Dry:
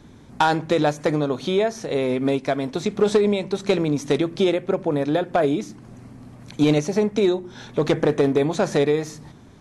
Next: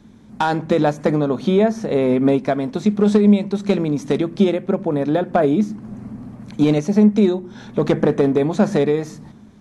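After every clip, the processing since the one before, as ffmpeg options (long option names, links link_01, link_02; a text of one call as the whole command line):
ffmpeg -i in.wav -filter_complex "[0:a]equalizer=frequency=210:width=5.3:gain=13,acrossover=split=1800[link_01][link_02];[link_01]dynaudnorm=framelen=110:gausssize=9:maxgain=11.5dB[link_03];[link_03][link_02]amix=inputs=2:normalize=0,volume=-3.5dB" out.wav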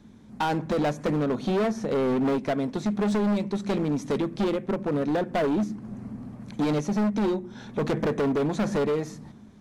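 ffmpeg -i in.wav -af "asoftclip=type=hard:threshold=-17dB,volume=-4.5dB" out.wav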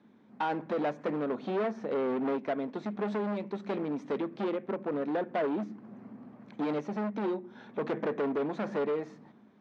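ffmpeg -i in.wav -af "highpass=270,lowpass=2600,volume=-4.5dB" out.wav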